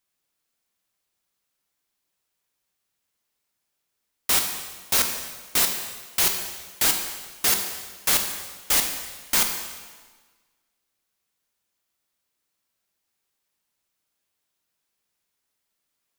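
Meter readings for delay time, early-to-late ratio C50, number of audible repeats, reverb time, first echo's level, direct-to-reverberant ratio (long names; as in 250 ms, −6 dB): no echo audible, 6.0 dB, no echo audible, 1.4 s, no echo audible, 4.0 dB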